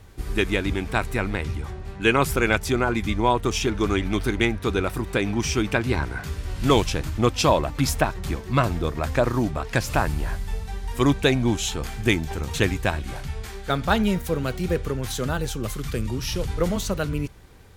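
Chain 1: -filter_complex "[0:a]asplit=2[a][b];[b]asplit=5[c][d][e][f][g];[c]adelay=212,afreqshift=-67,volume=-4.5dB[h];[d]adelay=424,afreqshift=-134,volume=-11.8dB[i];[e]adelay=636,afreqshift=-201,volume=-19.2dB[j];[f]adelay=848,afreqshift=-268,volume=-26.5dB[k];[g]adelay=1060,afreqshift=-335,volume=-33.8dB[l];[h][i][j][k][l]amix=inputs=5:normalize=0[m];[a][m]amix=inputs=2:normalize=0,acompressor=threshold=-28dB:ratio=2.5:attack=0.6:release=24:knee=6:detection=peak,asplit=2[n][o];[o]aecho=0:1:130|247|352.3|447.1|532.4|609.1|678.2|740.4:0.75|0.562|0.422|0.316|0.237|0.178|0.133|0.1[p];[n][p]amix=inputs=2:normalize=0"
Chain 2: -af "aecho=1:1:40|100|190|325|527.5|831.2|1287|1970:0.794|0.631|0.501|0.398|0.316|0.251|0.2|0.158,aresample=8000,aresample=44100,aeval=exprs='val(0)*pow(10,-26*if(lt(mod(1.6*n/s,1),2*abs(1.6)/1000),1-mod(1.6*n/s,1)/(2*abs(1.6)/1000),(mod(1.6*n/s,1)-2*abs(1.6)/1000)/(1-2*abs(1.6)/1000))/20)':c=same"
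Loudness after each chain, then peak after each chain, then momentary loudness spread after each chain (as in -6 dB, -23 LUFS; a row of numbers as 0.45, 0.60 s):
-26.5, -28.0 LUFS; -12.0, -3.5 dBFS; 4, 13 LU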